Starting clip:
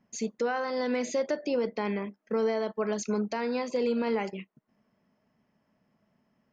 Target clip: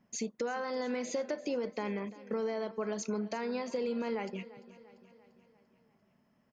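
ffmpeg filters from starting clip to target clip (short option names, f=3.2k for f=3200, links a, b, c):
-af "acompressor=threshold=-34dB:ratio=2.5,aecho=1:1:344|688|1032|1376|1720:0.126|0.0692|0.0381|0.0209|0.0115"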